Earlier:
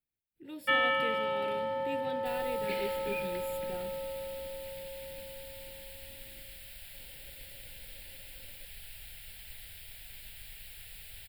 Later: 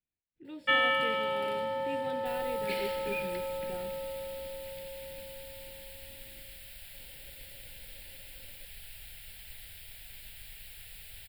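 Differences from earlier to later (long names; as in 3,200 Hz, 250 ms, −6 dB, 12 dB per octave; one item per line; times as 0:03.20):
speech: add high-frequency loss of the air 120 metres
first sound: add high-shelf EQ 4,000 Hz +8.5 dB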